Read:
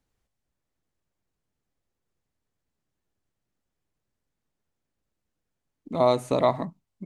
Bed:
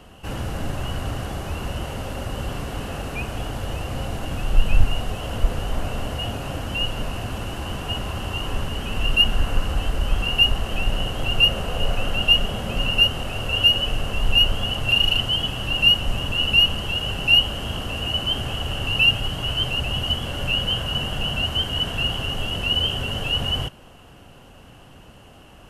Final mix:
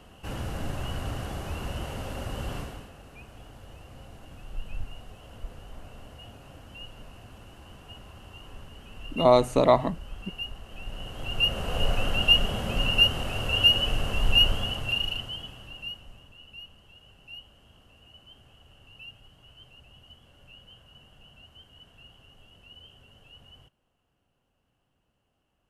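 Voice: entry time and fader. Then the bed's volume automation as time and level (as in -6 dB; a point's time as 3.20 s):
3.25 s, +2.5 dB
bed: 2.59 s -5.5 dB
2.93 s -19 dB
10.67 s -19 dB
11.77 s -3 dB
14.48 s -3 dB
16.40 s -29 dB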